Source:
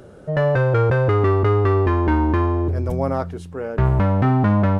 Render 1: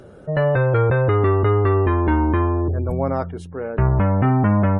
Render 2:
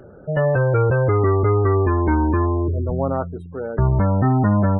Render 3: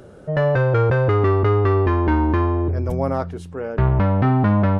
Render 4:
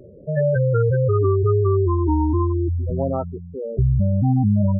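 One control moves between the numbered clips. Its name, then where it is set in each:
gate on every frequency bin, under each frame's peak: −40, −25, −60, −10 decibels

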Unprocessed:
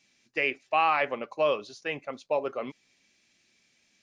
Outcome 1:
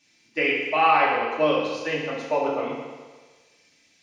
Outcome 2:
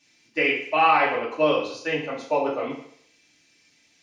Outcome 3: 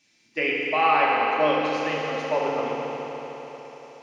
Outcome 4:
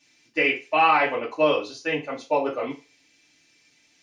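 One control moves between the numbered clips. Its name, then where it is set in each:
feedback delay network reverb, RT60: 1.4, 0.64, 4.4, 0.3 seconds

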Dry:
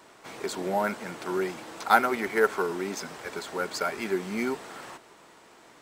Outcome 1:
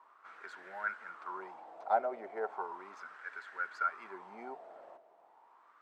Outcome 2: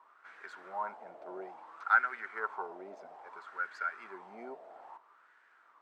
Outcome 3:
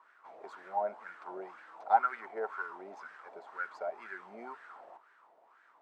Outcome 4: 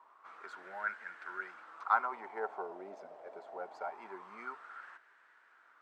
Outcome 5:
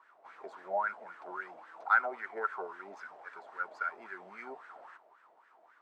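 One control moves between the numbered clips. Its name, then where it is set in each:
LFO wah, speed: 0.36, 0.6, 2, 0.24, 3.7 Hertz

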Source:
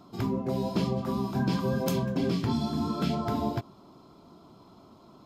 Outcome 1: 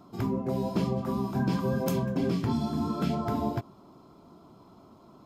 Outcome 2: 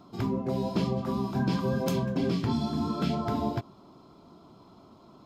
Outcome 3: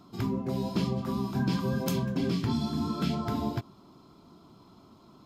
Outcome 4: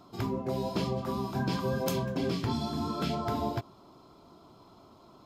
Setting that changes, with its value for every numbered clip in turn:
parametric band, centre frequency: 4,000, 15,000, 610, 200 Hertz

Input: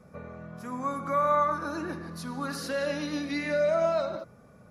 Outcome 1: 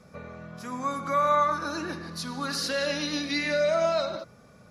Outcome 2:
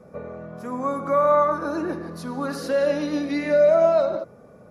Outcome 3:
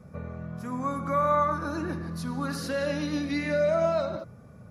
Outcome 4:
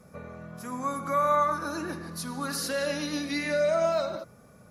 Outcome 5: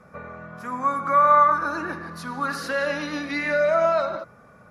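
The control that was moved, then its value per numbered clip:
parametric band, centre frequency: 4,400, 470, 95, 14,000, 1,400 Hertz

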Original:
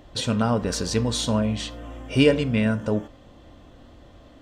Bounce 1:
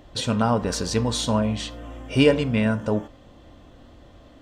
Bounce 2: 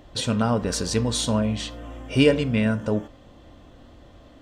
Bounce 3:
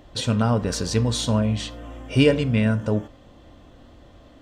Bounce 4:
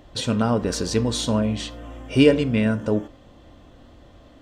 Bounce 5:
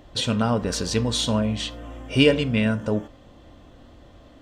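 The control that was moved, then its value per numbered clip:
dynamic equaliser, frequency: 900, 9,100, 110, 340, 3,100 Hertz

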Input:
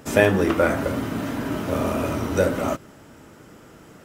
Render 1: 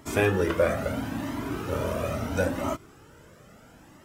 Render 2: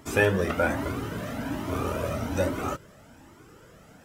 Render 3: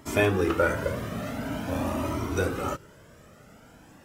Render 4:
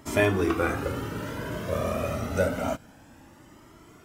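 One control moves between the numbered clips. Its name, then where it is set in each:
flanger whose copies keep moving one way, speed: 0.74, 1.2, 0.47, 0.27 Hertz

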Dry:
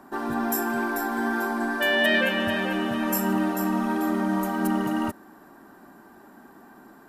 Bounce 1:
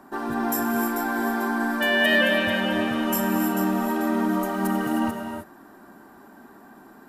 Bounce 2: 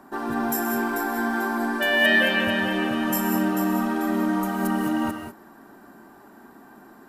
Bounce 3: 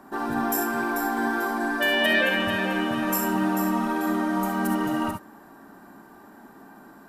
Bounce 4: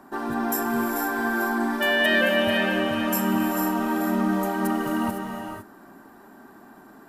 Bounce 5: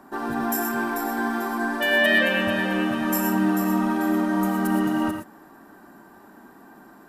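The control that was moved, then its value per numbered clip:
reverb whose tail is shaped and stops, gate: 340, 220, 90, 530, 140 milliseconds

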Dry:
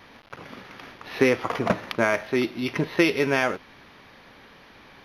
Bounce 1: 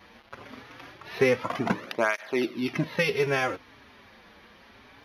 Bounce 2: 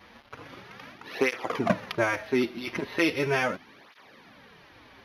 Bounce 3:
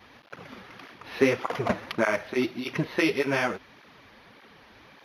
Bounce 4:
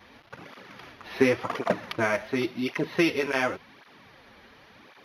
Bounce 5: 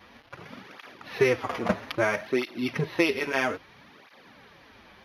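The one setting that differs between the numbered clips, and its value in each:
through-zero flanger with one copy inverted, nulls at: 0.23, 0.38, 1.7, 0.91, 0.61 Hertz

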